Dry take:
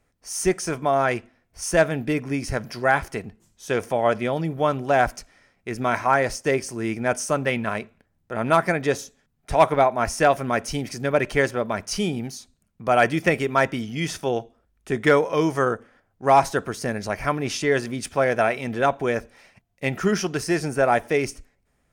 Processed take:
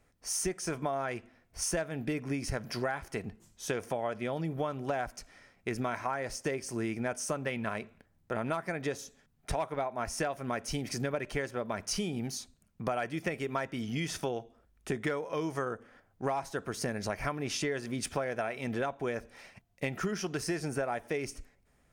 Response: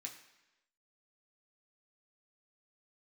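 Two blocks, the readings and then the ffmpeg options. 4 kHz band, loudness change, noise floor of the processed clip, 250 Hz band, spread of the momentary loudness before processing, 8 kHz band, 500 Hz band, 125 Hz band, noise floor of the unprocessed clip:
−7.5 dB, −12.0 dB, −69 dBFS, −9.5 dB, 10 LU, −5.5 dB, −13.0 dB, −9.0 dB, −69 dBFS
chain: -af "acompressor=threshold=-30dB:ratio=10"

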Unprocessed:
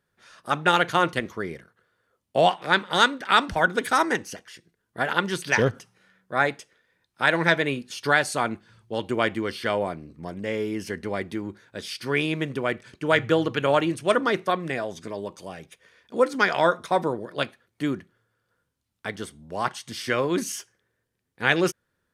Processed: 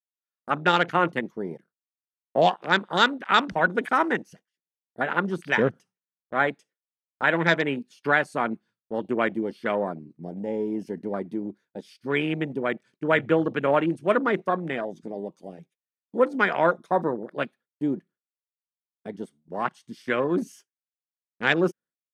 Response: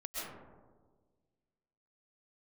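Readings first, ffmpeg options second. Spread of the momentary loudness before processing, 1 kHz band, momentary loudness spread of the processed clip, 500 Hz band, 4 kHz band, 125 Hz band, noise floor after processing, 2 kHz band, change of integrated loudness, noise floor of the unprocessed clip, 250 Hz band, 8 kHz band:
15 LU, −1.0 dB, 15 LU, −0.5 dB, −3.5 dB, −2.0 dB, below −85 dBFS, −1.0 dB, −0.5 dB, −77 dBFS, +1.0 dB, below −10 dB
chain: -af "afwtdn=0.0282,lowshelf=frequency=120:width_type=q:width=1.5:gain=-13.5,agate=range=-33dB:threshold=-45dB:ratio=3:detection=peak,volume=-1dB"

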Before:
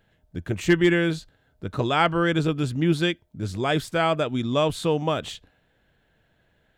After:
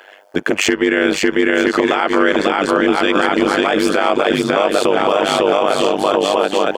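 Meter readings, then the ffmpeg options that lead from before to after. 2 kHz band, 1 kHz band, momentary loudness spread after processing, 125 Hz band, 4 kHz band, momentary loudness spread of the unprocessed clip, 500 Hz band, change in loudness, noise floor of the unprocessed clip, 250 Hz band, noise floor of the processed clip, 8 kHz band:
+11.0 dB, +11.5 dB, 1 LU, −6.5 dB, +10.0 dB, 14 LU, +11.5 dB, +8.5 dB, −66 dBFS, +8.5 dB, −41 dBFS, +13.5 dB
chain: -filter_complex "[0:a]acrossover=split=420[link_01][link_02];[link_01]aeval=exprs='sgn(val(0))*max(abs(val(0))-0.00398,0)':channel_layout=same[link_03];[link_03][link_02]amix=inputs=2:normalize=0,aecho=1:1:550|962.5|1272|1504|1678:0.631|0.398|0.251|0.158|0.1,acompressor=threshold=-33dB:ratio=5,highpass=frequency=320:width=0.5412,highpass=frequency=320:width=1.3066,highshelf=frequency=6500:gain=-9.5,bandreject=frequency=3800:width=5.8,tremolo=f=99:d=0.974,alimiter=level_in=34.5dB:limit=-1dB:release=50:level=0:latency=1,volume=-3dB"

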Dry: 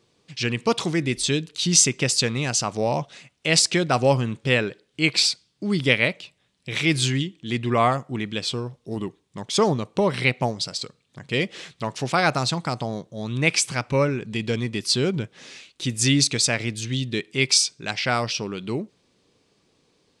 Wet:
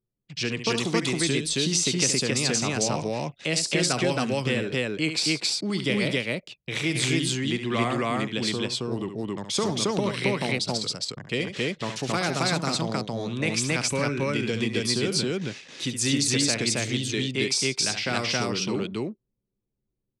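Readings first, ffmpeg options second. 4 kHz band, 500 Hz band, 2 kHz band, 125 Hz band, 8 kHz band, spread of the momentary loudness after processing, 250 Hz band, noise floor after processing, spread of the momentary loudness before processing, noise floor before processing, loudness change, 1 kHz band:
−2.0 dB, −2.5 dB, −3.0 dB, −3.5 dB, −3.0 dB, 8 LU, −1.0 dB, −82 dBFS, 13 LU, −67 dBFS, −3.0 dB, −5.0 dB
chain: -filter_complex "[0:a]anlmdn=0.1,acrossover=split=180|480|1300|5700[link_01][link_02][link_03][link_04][link_05];[link_01]acompressor=threshold=-40dB:ratio=4[link_06];[link_02]acompressor=threshold=-28dB:ratio=4[link_07];[link_03]acompressor=threshold=-39dB:ratio=4[link_08];[link_04]acompressor=threshold=-30dB:ratio=4[link_09];[link_05]acompressor=threshold=-29dB:ratio=4[link_10];[link_06][link_07][link_08][link_09][link_10]amix=inputs=5:normalize=0,aecho=1:1:69.97|271.1:0.355|1"

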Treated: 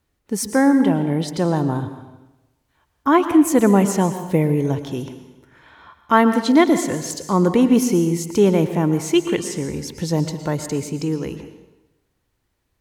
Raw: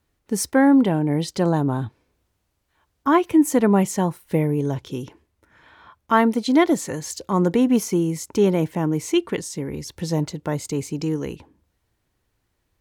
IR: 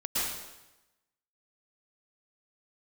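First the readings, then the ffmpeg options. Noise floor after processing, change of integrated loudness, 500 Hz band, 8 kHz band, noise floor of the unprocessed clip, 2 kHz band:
−71 dBFS, +2.5 dB, +2.5 dB, +2.5 dB, −73 dBFS, +2.5 dB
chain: -filter_complex "[0:a]asplit=2[link_01][link_02];[1:a]atrim=start_sample=2205[link_03];[link_02][link_03]afir=irnorm=-1:irlink=0,volume=-16dB[link_04];[link_01][link_04]amix=inputs=2:normalize=0,dynaudnorm=framelen=270:gausssize=21:maxgain=11.5dB,volume=-1dB"

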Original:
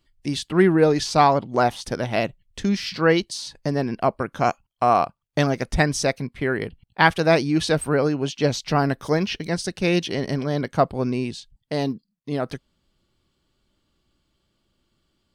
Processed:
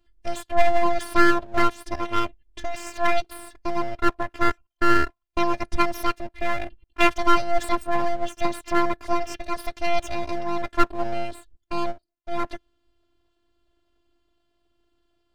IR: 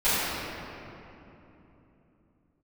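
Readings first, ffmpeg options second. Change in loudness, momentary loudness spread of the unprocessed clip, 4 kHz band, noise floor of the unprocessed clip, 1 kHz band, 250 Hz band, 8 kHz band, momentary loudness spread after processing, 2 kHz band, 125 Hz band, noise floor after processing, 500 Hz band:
−3.0 dB, 11 LU, −5.0 dB, −73 dBFS, −0.5 dB, −5.0 dB, −7.0 dB, 13 LU, −1.5 dB, −14.0 dB, −75 dBFS, −5.0 dB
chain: -af "highshelf=frequency=3300:gain=-11.5,afftfilt=real='hypot(re,im)*cos(PI*b)':imag='0':win_size=512:overlap=0.75,aeval=exprs='abs(val(0))':channel_layout=same,volume=5dB"

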